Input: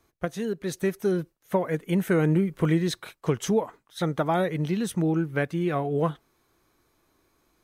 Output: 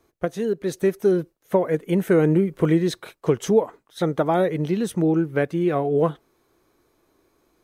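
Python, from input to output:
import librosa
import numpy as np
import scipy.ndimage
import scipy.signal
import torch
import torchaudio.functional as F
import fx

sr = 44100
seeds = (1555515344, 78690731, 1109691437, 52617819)

y = fx.peak_eq(x, sr, hz=430.0, db=7.0, octaves=1.6)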